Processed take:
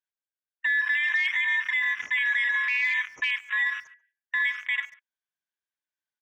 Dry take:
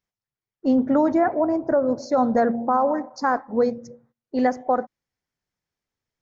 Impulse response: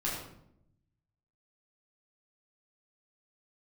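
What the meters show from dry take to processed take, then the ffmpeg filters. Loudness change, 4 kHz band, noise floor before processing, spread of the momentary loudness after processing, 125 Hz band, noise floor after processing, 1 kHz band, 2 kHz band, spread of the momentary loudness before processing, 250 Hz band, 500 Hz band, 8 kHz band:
-2.5 dB, +12.5 dB, under -85 dBFS, 7 LU, under -30 dB, under -85 dBFS, -20.0 dB, +14.5 dB, 5 LU, under -40 dB, under -40 dB, no reading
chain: -filter_complex "[0:a]afftfilt=real='real(if(lt(b,272),68*(eq(floor(b/68),0)*3+eq(floor(b/68),1)*0+eq(floor(b/68),2)*1+eq(floor(b/68),3)*2)+mod(b,68),b),0)':imag='imag(if(lt(b,272),68*(eq(floor(b/68),0)*3+eq(floor(b/68),1)*0+eq(floor(b/68),2)*1+eq(floor(b/68),3)*2)+mod(b,68),b),0)':win_size=2048:overlap=0.75,highpass=90,afwtdn=0.0355,acompressor=threshold=0.0891:ratio=6,alimiter=limit=0.0668:level=0:latency=1:release=94,asplit=2[s0][s1];[s1]adelay=140,highpass=300,lowpass=3400,asoftclip=type=hard:threshold=0.0266,volume=0.1[s2];[s0][s2]amix=inputs=2:normalize=0,volume=2"

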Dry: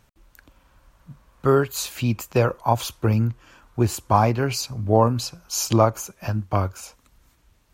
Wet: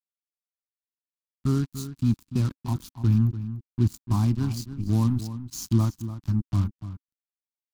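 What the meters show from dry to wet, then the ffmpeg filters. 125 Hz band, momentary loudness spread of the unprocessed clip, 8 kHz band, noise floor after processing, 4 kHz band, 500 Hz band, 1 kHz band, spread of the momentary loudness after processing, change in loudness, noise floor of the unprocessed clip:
0.0 dB, 10 LU, -12.0 dB, under -85 dBFS, -12.0 dB, -19.0 dB, -18.0 dB, 10 LU, -4.0 dB, -62 dBFS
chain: -filter_complex "[0:a]acrusher=bits=3:mix=0:aa=0.5,firequalizer=gain_entry='entry(270,0);entry(490,-29);entry(1000,-16);entry(2000,-21);entry(4100,-11)':delay=0.05:min_phase=1,asplit=2[s0][s1];[s1]adelay=291.5,volume=0.251,highshelf=f=4000:g=-6.56[s2];[s0][s2]amix=inputs=2:normalize=0"

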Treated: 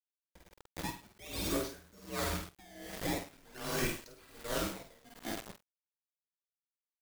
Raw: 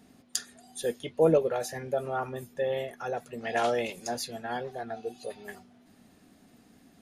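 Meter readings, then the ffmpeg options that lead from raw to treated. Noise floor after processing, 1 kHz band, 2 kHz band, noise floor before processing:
under -85 dBFS, -10.0 dB, -4.0 dB, -60 dBFS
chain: -filter_complex "[0:a]acrusher=samples=18:mix=1:aa=0.000001:lfo=1:lforange=28.8:lforate=0.44,afftfilt=real='re*lt(hypot(re,im),0.282)':imag='im*lt(hypot(re,im),0.282)':win_size=1024:overlap=0.75,afreqshift=-210,aecho=1:1:50|107.5|173.6|249.7|337.1:0.631|0.398|0.251|0.158|0.1,acrusher=bits=5:mix=0:aa=0.000001,asplit=2[s0][s1];[s1]adelay=47,volume=0.355[s2];[s0][s2]amix=inputs=2:normalize=0,aeval=exprs='val(0)*pow(10,-25*(0.5-0.5*cos(2*PI*1.3*n/s))/20)':c=same,volume=0.794"

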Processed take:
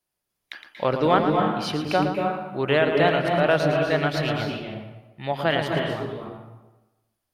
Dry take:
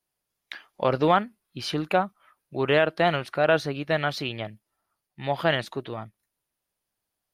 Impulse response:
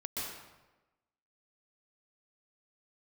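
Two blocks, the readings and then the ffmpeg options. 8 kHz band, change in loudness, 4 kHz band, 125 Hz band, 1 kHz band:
no reading, +2.5 dB, +1.5 dB, +4.5 dB, +2.5 dB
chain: -filter_complex "[0:a]asplit=2[s0][s1];[1:a]atrim=start_sample=2205,lowshelf=f=350:g=7,adelay=113[s2];[s1][s2]afir=irnorm=-1:irlink=0,volume=0.562[s3];[s0][s3]amix=inputs=2:normalize=0"

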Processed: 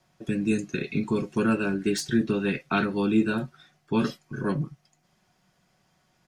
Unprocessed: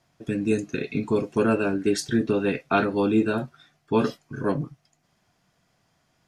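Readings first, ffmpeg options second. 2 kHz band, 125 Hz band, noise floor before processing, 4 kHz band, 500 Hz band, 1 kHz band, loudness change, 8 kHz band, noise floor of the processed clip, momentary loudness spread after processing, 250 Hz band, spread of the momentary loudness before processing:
-0.5 dB, 0.0 dB, -70 dBFS, 0.0 dB, -5.0 dB, -4.0 dB, -2.0 dB, -0.5 dB, -69 dBFS, 8 LU, -0.5 dB, 8 LU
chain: -filter_complex "[0:a]aecho=1:1:5.4:0.37,acrossover=split=370|1000|3300[s0][s1][s2][s3];[s1]acompressor=threshold=0.01:ratio=6[s4];[s3]volume=21.1,asoftclip=hard,volume=0.0473[s5];[s0][s4][s2][s5]amix=inputs=4:normalize=0"

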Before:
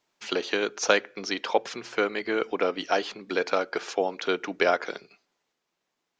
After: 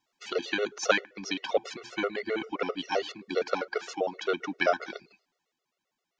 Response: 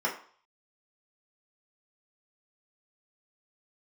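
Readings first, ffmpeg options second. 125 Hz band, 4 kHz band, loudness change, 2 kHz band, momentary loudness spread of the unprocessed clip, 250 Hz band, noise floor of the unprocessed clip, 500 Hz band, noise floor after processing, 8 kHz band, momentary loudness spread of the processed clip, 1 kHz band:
-2.5 dB, -3.5 dB, -3.5 dB, -3.0 dB, 7 LU, -3.0 dB, -81 dBFS, -3.5 dB, -85 dBFS, no reading, 7 LU, -4.0 dB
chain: -af "afftfilt=real='re*gt(sin(2*PI*7.6*pts/sr)*(1-2*mod(floor(b*sr/1024/370),2)),0)':imag='im*gt(sin(2*PI*7.6*pts/sr)*(1-2*mod(floor(b*sr/1024/370),2)),0)':win_size=1024:overlap=0.75"

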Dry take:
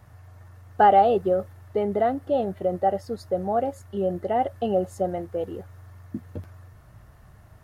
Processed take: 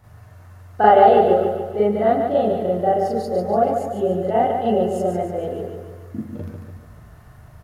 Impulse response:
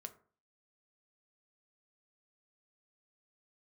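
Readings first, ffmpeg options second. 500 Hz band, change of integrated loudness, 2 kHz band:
+6.5 dB, +6.0 dB, +5.5 dB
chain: -filter_complex "[0:a]aecho=1:1:145|290|435|580|725|870:0.501|0.256|0.13|0.0665|0.0339|0.0173,asplit=2[s0][s1];[1:a]atrim=start_sample=2205,adelay=39[s2];[s1][s2]afir=irnorm=-1:irlink=0,volume=3.35[s3];[s0][s3]amix=inputs=2:normalize=0,volume=0.794"

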